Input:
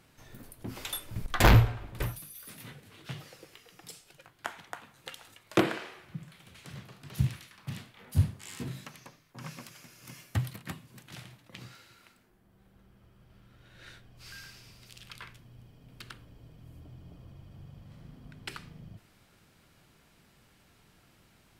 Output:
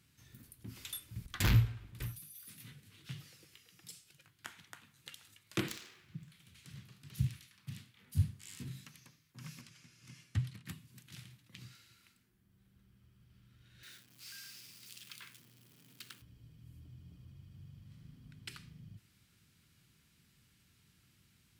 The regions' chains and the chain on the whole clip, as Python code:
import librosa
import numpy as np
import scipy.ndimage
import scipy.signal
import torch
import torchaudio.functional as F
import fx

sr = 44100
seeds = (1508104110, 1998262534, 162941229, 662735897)

y = fx.chain(x, sr, fx.self_delay(depth_ms=0.73),
    fx.highpass(hz=49.0, slope=12),
    fx.peak_eq(hz=9300.0, db=-6.0, octaves=0.26), at=(5.68, 6.3))
y = fx.chain(y, sr, fx.lowpass(hz=9400.0, slope=12),
    fx.high_shelf(hz=6100.0, db=-7.5), at=(9.61, 10.66))
y = fx.chain(y, sr, fx.zero_step(step_db=-50.0),
    fx.highpass(hz=250.0, slope=12),
    fx.high_shelf(hz=8900.0, db=6.0), at=(13.83, 16.22))
y = scipy.signal.sosfilt(scipy.signal.butter(2, 75.0, 'highpass', fs=sr, output='sos'), y)
y = fx.rider(y, sr, range_db=4, speed_s=2.0)
y = fx.tone_stack(y, sr, knobs='6-0-2')
y = y * 10.0 ** (7.0 / 20.0)